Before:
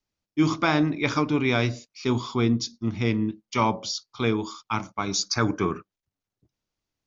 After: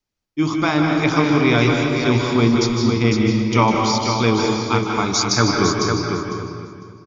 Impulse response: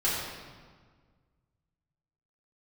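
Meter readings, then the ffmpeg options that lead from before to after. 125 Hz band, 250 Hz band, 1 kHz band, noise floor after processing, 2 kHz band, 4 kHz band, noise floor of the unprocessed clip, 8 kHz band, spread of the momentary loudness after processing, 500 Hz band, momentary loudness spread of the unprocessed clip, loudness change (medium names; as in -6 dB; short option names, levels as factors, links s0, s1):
+8.5 dB, +8.0 dB, +8.5 dB, -80 dBFS, +8.0 dB, +8.5 dB, under -85 dBFS, no reading, 8 LU, +9.0 dB, 8 LU, +8.0 dB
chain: -filter_complex "[0:a]dynaudnorm=f=200:g=11:m=1.78,aecho=1:1:502|1004|1506:0.501|0.0802|0.0128,asplit=2[s0][s1];[1:a]atrim=start_sample=2205,adelay=149[s2];[s1][s2]afir=irnorm=-1:irlink=0,volume=0.251[s3];[s0][s3]amix=inputs=2:normalize=0,volume=1.19"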